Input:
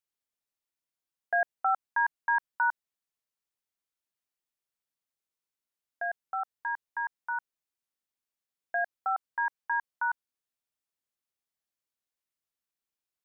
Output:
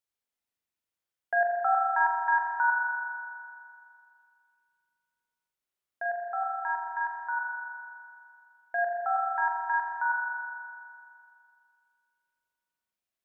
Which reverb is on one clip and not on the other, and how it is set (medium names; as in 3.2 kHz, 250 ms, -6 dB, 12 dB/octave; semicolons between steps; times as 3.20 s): spring tank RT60 2.4 s, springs 40 ms, chirp 70 ms, DRR -0.5 dB; trim -1 dB